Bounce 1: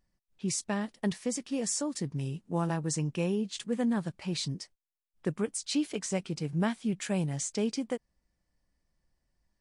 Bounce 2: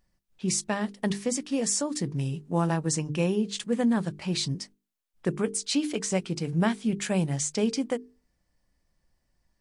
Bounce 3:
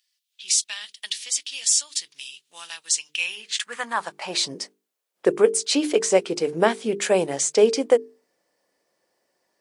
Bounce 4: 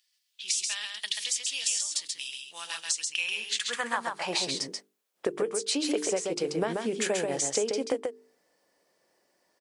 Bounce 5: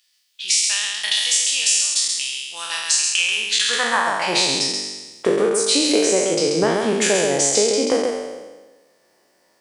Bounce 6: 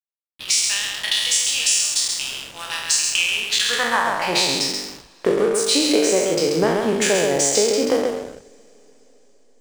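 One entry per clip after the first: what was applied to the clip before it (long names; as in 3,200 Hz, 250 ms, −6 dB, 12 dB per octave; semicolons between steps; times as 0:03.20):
mains-hum notches 50/100/150/200/250/300/350/400/450 Hz; level +5 dB
high-pass filter sweep 3,300 Hz → 440 Hz, 0:03.06–0:04.61; level +6.5 dB
downward compressor 10 to 1, threshold −26 dBFS, peak gain reduction 16 dB; on a send: single-tap delay 135 ms −4 dB
peak hold with a decay on every bin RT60 1.22 s; level +7.5 dB
slack as between gear wheels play −25 dBFS; coupled-rooms reverb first 0.56 s, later 4.9 s, from −16 dB, DRR 18 dB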